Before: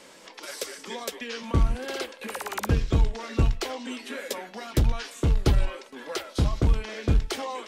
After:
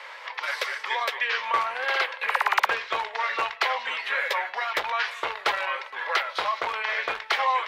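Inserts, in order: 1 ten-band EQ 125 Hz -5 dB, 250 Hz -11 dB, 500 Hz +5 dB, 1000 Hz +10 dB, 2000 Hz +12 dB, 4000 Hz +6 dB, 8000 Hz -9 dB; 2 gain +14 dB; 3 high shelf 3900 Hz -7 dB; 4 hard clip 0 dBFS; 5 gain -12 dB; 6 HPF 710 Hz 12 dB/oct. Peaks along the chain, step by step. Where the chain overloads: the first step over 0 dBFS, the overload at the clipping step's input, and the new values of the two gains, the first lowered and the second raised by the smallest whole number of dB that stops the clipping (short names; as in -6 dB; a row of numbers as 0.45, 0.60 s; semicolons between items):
-6.5, +7.5, +6.5, 0.0, -12.0, -9.0 dBFS; step 2, 6.5 dB; step 2 +7 dB, step 5 -5 dB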